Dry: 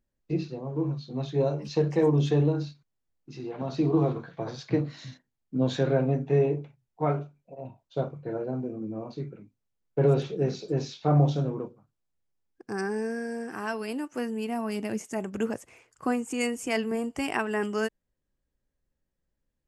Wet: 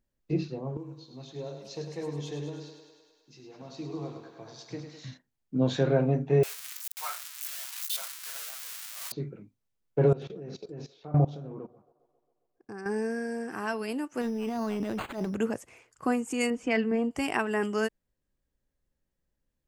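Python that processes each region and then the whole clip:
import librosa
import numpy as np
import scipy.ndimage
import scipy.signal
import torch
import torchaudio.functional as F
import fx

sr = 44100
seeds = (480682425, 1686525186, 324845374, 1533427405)

y = fx.chain(x, sr, fx.pre_emphasis(coefficient=0.8),
    fx.echo_thinned(ms=103, feedback_pct=71, hz=260.0, wet_db=-7.0), at=(0.77, 5.04))
y = fx.chain(y, sr, fx.crossing_spikes(level_db=-22.0),
    fx.highpass(hz=1100.0, slope=24), at=(6.43, 9.12))
y = fx.chain(y, sr, fx.level_steps(step_db=20),
    fx.high_shelf(hz=5200.0, db=-7.0),
    fx.echo_wet_bandpass(ms=135, feedback_pct=65, hz=810.0, wet_db=-22), at=(10.08, 12.86))
y = fx.chain(y, sr, fx.transient(attack_db=-12, sustain_db=10),
    fx.resample_bad(factor=8, down='none', up='hold'),
    fx.high_shelf(hz=3800.0, db=-12.0), at=(14.21, 15.35))
y = fx.chain(y, sr, fx.lowpass(hz=3300.0, slope=12),
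    fx.comb(ms=4.0, depth=0.44), at=(16.5, 17.11))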